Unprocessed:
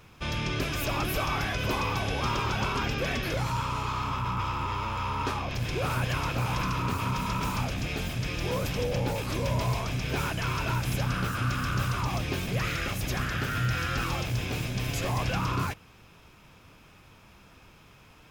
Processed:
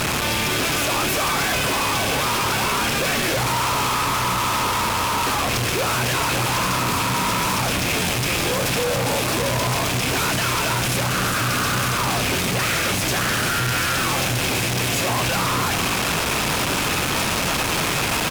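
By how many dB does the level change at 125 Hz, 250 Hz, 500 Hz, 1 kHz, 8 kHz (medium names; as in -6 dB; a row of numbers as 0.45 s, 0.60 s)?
+3.5 dB, +8.0 dB, +9.5 dB, +10.0 dB, +18.5 dB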